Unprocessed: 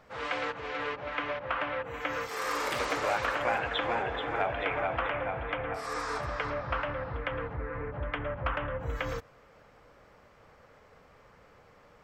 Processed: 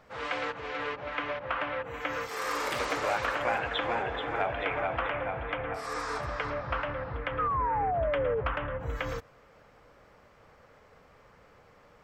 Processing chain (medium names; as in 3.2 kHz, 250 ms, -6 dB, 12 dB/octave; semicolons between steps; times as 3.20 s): painted sound fall, 7.38–8.41 s, 430–1300 Hz -29 dBFS